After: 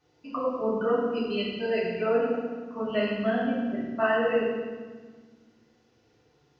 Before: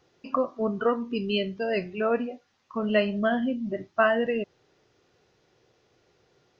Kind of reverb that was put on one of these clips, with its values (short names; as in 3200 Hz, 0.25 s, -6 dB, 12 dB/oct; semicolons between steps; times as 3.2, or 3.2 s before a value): FDN reverb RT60 1.5 s, low-frequency decay 1.5×, high-frequency decay 0.85×, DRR -8.5 dB; gain -10 dB